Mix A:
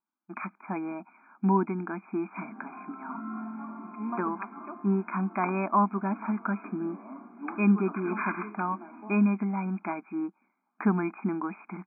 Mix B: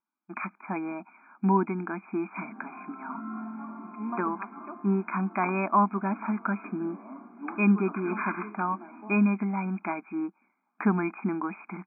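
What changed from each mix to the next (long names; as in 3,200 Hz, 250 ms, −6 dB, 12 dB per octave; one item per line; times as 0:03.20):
speech: remove high-frequency loss of the air 330 metres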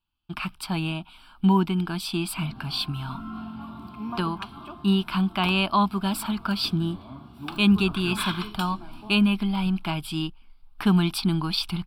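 master: remove linear-phase brick-wall band-pass 190–2,500 Hz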